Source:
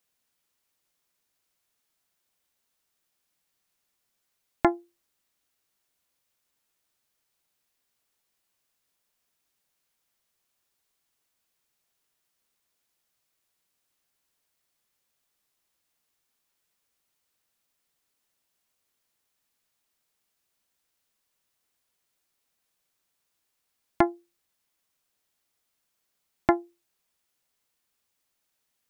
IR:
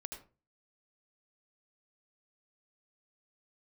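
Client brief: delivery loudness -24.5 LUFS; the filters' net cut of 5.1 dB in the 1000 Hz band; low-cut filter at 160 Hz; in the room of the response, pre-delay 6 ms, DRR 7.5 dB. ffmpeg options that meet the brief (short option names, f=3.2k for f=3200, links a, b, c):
-filter_complex "[0:a]highpass=160,equalizer=f=1k:t=o:g=-7.5,asplit=2[a][b];[1:a]atrim=start_sample=2205,adelay=6[c];[b][c]afir=irnorm=-1:irlink=0,volume=-5dB[d];[a][d]amix=inputs=2:normalize=0,volume=4dB"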